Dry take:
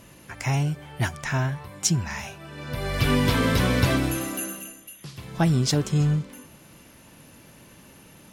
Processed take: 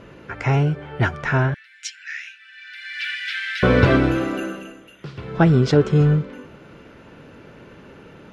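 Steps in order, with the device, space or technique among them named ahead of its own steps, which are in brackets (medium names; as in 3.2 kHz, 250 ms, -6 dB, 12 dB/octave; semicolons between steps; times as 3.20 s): 1.54–3.63 s: steep high-pass 1.6 kHz 72 dB/octave; inside a cardboard box (low-pass 2.8 kHz 12 dB/octave; small resonant body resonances 430/1400 Hz, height 9 dB, ringing for 20 ms); trim +5 dB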